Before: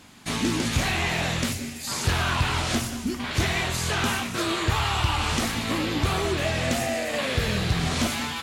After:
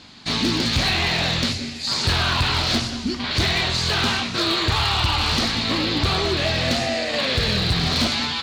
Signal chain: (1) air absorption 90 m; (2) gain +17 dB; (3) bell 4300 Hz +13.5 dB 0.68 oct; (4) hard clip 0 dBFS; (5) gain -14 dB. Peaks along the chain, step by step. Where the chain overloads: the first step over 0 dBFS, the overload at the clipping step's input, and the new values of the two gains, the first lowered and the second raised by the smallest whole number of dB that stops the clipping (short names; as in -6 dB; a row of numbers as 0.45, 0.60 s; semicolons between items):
-13.5, +3.5, +7.5, 0.0, -14.0 dBFS; step 2, 7.5 dB; step 2 +9 dB, step 5 -6 dB